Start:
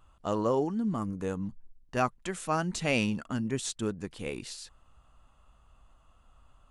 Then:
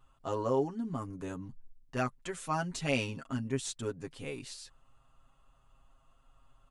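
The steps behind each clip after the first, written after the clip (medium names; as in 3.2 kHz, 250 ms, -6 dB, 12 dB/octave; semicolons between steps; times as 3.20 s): comb 7.4 ms, depth 85%; trim -6 dB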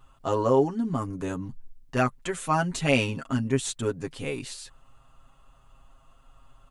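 dynamic bell 5.2 kHz, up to -5 dB, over -55 dBFS, Q 2.1; trim +8.5 dB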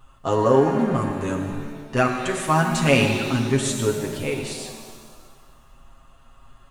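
pitch-shifted reverb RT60 1.7 s, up +7 st, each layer -8 dB, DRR 3.5 dB; trim +4 dB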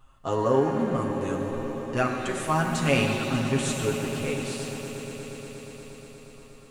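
echo with a slow build-up 119 ms, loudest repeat 5, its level -16 dB; trim -5.5 dB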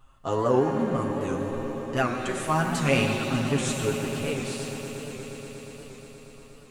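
warped record 78 rpm, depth 100 cents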